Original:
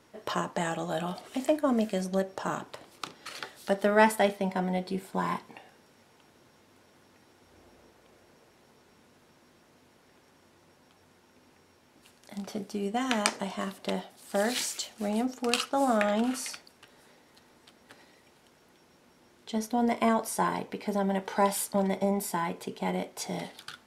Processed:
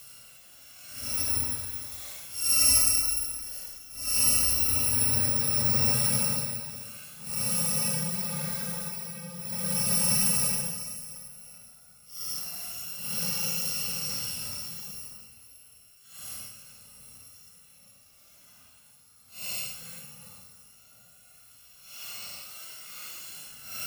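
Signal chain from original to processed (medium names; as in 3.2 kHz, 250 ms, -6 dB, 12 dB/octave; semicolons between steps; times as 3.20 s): bit-reversed sample order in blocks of 128 samples; Paulstretch 11×, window 0.05 s, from 1.26 s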